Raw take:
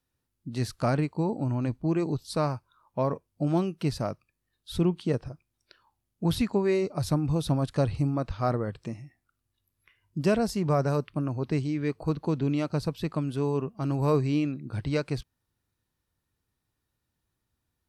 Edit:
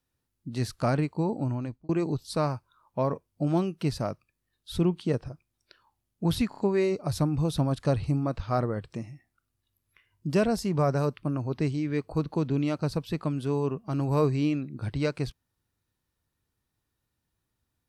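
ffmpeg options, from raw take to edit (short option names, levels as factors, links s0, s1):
-filter_complex "[0:a]asplit=5[s0][s1][s2][s3][s4];[s0]atrim=end=1.89,asetpts=PTS-STARTPTS,afade=t=out:st=1.45:d=0.44[s5];[s1]atrim=start=1.89:end=6.522,asetpts=PTS-STARTPTS,afade=t=in:d=0.004:c=hsin[s6];[s2]atrim=start=6.488:end=6.522[s7];[s3]atrim=start=6.488:end=6.522[s8];[s4]atrim=start=6.488[s9];[s5][s6]concat=n=2:v=0:a=1[s10];[s10][s7]acrossfade=d=0.004:c1=hsin:c2=hsin[s11];[s11][s8]acrossfade=d=0.004:c1=hsin:c2=hsin[s12];[s12][s9]acrossfade=d=0.004:c1=hsin:c2=hsin"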